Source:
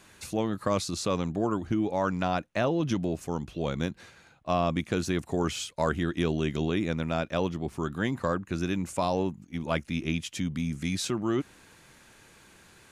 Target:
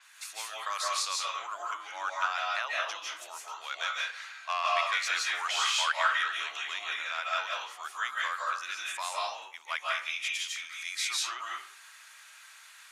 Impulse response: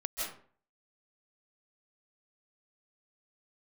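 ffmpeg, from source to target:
-filter_complex "[0:a]asettb=1/sr,asplit=3[a][b][c];[a]atrim=end=3.704[d];[b]atrim=start=3.7:end=6.13,asetpts=PTS-STARTPTS,afade=t=in:d=0.004:c=qsin,afade=t=out:st=2.426:d=0.004:c=qsin,asplit=2[e][f];[f]highpass=f=720:p=1,volume=12dB,asoftclip=type=tanh:threshold=-12.5dB[g];[e][g]amix=inputs=2:normalize=0,lowpass=f=4.2k:p=1,volume=-6dB[h];[c]atrim=start=6.126[i];[d][h]acrossfade=d=0.004:c1=hsin:c2=qsin[j];[j][i]acrossfade=d=0.004:c1=qsin:c2=hsin,highpass=f=1.1k:w=0.5412,highpass=f=1.1k:w=1.3066[k];[1:a]atrim=start_sample=2205[l];[k][l]afir=irnorm=-1:irlink=0,adynamicequalizer=threshold=0.00501:dfrequency=6600:dqfactor=0.7:tfrequency=6600:tqfactor=0.7:attack=5:release=100:ratio=0.375:range=2:mode=cutabove:tftype=highshelf,volume=2dB"

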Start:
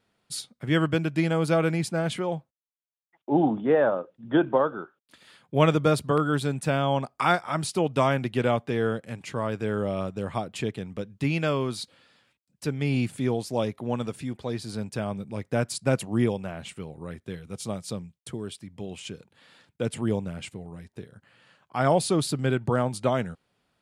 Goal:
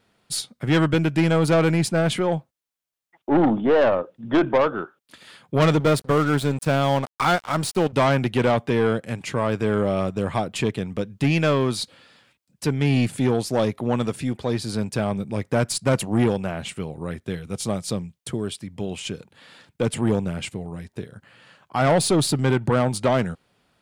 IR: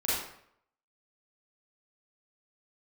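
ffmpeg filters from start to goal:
-filter_complex "[0:a]asettb=1/sr,asplit=3[a][b][c];[a]atrim=end=5.804[d];[b]atrim=start=5.8:end=7.93,asetpts=PTS-STARTPTS,afade=t=in:d=0.004:c=qsin,afade=t=out:st=2.126:d=0.004:c=qsin,aeval=exprs='sgn(val(0))*max(abs(val(0))-0.0112,0)':c=same[e];[c]atrim=start=7.926[f];[d][e]acrossfade=d=0.004:c1=hsin:c2=qsin[g];[g][f]acrossfade=d=0.004:c1=qsin:c2=hsin,aeval=exprs='(tanh(11.2*val(0)+0.25)-tanh(0.25))/11.2':c=same,volume=8dB"

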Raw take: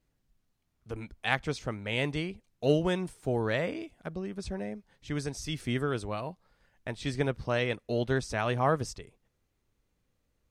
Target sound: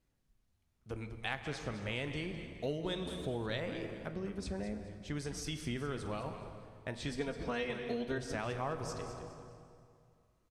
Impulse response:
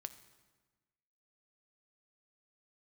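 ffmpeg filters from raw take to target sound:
-filter_complex "[0:a]asettb=1/sr,asplit=3[a][b][c];[a]atrim=end=7.114[d];[b]atrim=start=7.11:end=8.18,asetpts=PTS-STARTPTS,afade=t=in:d=0.004:c=qsin,afade=t=out:st=1.066:d=0.004:c=qsin,aecho=1:1:4.3:0.86,atrim=end_sample=47187[e];[c]atrim=start=8.176[f];[d][e]acrossfade=d=0.004:c1=hsin:c2=qsin[g];[g][f]acrossfade=d=0.004:c1=qsin:c2=hsin[h];[1:a]atrim=start_sample=2205,asetrate=24696,aresample=44100[i];[h][i]afir=irnorm=-1:irlink=0,acompressor=threshold=-34dB:ratio=4,asettb=1/sr,asplit=3[j][k][l];[j]atrim=end=2.834[m];[k]atrim=start=2.83:end=3.6,asetpts=PTS-STARTPTS,afade=t=in:d=0.004:c=qsin,afade=t=out:st=0.766:d=0.004:c=qsin,equalizer=f=3.7k:w=5:g=14.5[n];[l]atrim=start=3.596[o];[m][n]acrossfade=d=0.004:c1=hsin:c2=qsin[p];[p][o]acrossfade=d=0.004:c1=qsin:c2=hsin,asplit=4[q][r][s][t];[r]adelay=209,afreqshift=-110,volume=-11dB[u];[s]adelay=418,afreqshift=-220,volume=-21.2dB[v];[t]adelay=627,afreqshift=-330,volume=-31.3dB[w];[q][u][v][w]amix=inputs=4:normalize=0,volume=-1dB"

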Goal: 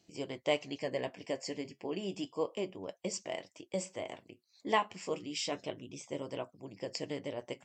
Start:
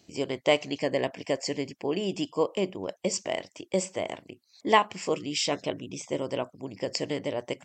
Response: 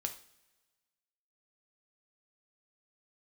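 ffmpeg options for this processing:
-af "flanger=delay=5.9:depth=5.1:regen=-58:speed=0.3:shape=sinusoidal,volume=-4.5dB"

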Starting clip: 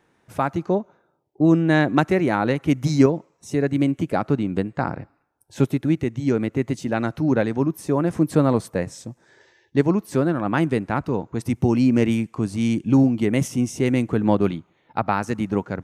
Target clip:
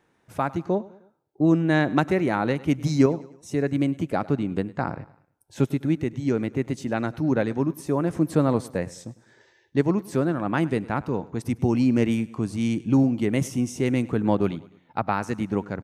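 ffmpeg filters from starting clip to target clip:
-af "aecho=1:1:102|204|306:0.0944|0.0434|0.02,volume=-3dB"

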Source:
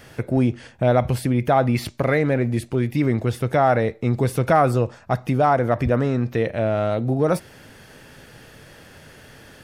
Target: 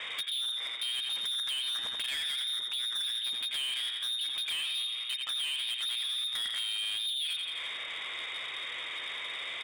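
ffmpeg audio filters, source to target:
-filter_complex "[0:a]asplit=2[a][b];[b]aeval=exprs='0.473*sin(PI/2*2*val(0)/0.473)':c=same,volume=-9dB[c];[a][c]amix=inputs=2:normalize=0,equalizer=f=1.4k:t=o:w=1.4:g=5,lowpass=f=3.2k:t=q:w=0.5098,lowpass=f=3.2k:t=q:w=0.6013,lowpass=f=3.2k:t=q:w=0.9,lowpass=f=3.2k:t=q:w=2.563,afreqshift=-3800,asplit=2[d][e];[e]aecho=0:1:84|168|252|336|420:0.355|0.153|0.0656|0.0282|0.0121[f];[d][f]amix=inputs=2:normalize=0,acompressor=threshold=-24dB:ratio=16,asoftclip=type=tanh:threshold=-30.5dB"

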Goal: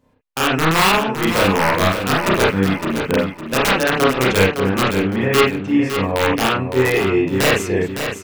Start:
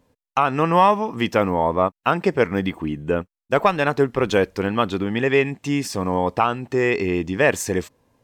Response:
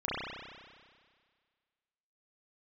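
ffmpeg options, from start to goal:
-filter_complex "[0:a]asettb=1/sr,asplit=3[a][b][c];[a]atrim=end=4.564[d];[b]atrim=start=4.56:end=6.2,asetpts=PTS-STARTPTS,afade=t=in:d=0.004:c=qsin,afade=t=out:st=1.636:d=0.004:c=qsin,lowpass=f=2.3k:p=1[e];[c]atrim=start=6.196[f];[d][e]acrossfade=d=0.004:c1=hsin:c2=qsin[g];[g][f]acrossfade=d=0.004:c1=qsin:c2=hsin,aeval=exprs='(mod(3.16*val(0)+1,2)-1)/3.16':c=same,aecho=1:1:560|1120|1680:0.398|0.115|0.0335[h];[1:a]atrim=start_sample=2205,afade=t=out:st=0.13:d=0.01,atrim=end_sample=6174[i];[h][i]afir=irnorm=-1:irlink=0,volume=-1dB"

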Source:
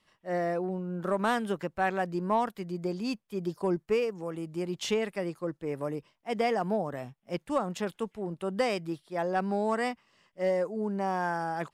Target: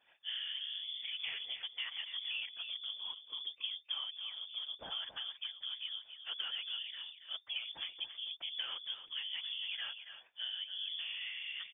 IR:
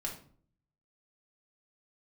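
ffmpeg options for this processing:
-filter_complex "[0:a]acompressor=threshold=-42dB:ratio=3,afftfilt=real='hypot(re,im)*cos(2*PI*random(0))':imag='hypot(re,im)*sin(2*PI*random(1))':win_size=512:overlap=0.75,asplit=2[a][b];[b]aecho=0:1:279:0.335[c];[a][c]amix=inputs=2:normalize=0,lowpass=f=3.1k:t=q:w=0.5098,lowpass=f=3.1k:t=q:w=0.6013,lowpass=f=3.1k:t=q:w=0.9,lowpass=f=3.1k:t=q:w=2.563,afreqshift=-3600,volume=5dB"

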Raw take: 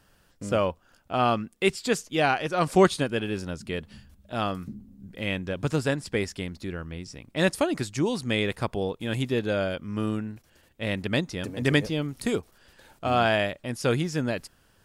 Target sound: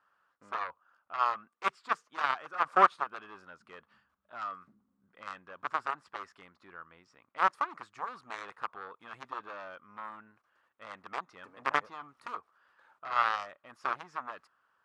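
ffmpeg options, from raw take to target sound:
-af "aeval=exprs='0.531*(cos(1*acos(clip(val(0)/0.531,-1,1)))-cos(1*PI/2))+0.0211*(cos(5*acos(clip(val(0)/0.531,-1,1)))-cos(5*PI/2))+0.133*(cos(7*acos(clip(val(0)/0.531,-1,1)))-cos(7*PI/2))':c=same,bandpass=f=1.2k:t=q:w=4.2:csg=0,volume=6.5dB"

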